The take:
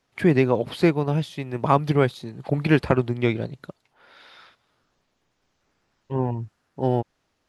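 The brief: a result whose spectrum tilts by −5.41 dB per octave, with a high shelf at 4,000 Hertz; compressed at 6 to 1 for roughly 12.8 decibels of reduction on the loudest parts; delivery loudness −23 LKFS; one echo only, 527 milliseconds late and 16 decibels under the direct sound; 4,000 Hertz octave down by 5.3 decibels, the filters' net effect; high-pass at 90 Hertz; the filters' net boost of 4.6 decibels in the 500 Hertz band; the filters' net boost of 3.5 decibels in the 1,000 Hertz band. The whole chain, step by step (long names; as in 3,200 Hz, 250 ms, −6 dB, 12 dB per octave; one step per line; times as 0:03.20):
high-pass filter 90 Hz
parametric band 500 Hz +5.5 dB
parametric band 1,000 Hz +3 dB
high-shelf EQ 4,000 Hz −5 dB
parametric band 4,000 Hz −4.5 dB
downward compressor 6 to 1, threshold −24 dBFS
single-tap delay 527 ms −16 dB
level +8 dB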